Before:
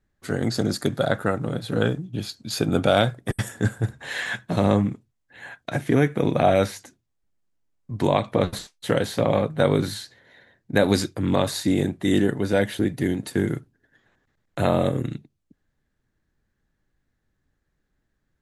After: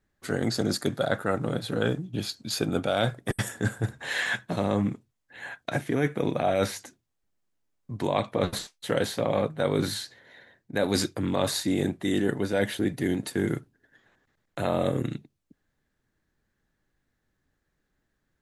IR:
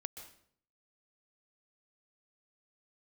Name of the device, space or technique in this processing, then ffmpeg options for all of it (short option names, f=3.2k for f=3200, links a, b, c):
compression on the reversed sound: -af "lowshelf=f=170:g=-6,areverse,acompressor=threshold=-22dB:ratio=6,areverse,volume=1dB"